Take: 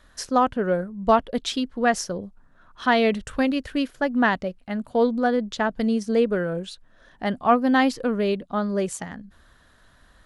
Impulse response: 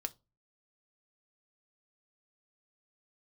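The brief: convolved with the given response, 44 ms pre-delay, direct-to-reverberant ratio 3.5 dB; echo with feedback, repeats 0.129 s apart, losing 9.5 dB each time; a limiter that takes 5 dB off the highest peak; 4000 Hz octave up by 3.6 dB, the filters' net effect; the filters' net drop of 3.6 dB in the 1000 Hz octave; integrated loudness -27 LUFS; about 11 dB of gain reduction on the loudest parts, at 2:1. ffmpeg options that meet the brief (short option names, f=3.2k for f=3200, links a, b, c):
-filter_complex "[0:a]equalizer=f=1k:t=o:g=-5.5,equalizer=f=4k:t=o:g=5,acompressor=threshold=-37dB:ratio=2,alimiter=level_in=1dB:limit=-24dB:level=0:latency=1,volume=-1dB,aecho=1:1:129|258|387|516:0.335|0.111|0.0365|0.012,asplit=2[a][b];[1:a]atrim=start_sample=2205,adelay=44[c];[b][c]afir=irnorm=-1:irlink=0,volume=-2.5dB[d];[a][d]amix=inputs=2:normalize=0,volume=6.5dB"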